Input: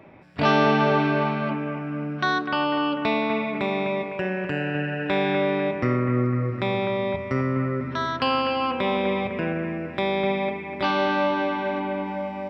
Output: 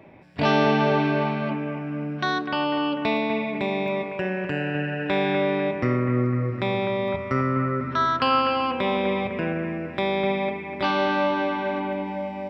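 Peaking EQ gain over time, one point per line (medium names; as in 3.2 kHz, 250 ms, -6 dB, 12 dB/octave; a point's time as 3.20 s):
peaking EQ 1.3 kHz 0.35 oct
-7 dB
from 3.17 s -13 dB
from 3.88 s -2 dB
from 7.08 s +7.5 dB
from 8.61 s -0.5 dB
from 11.93 s -11 dB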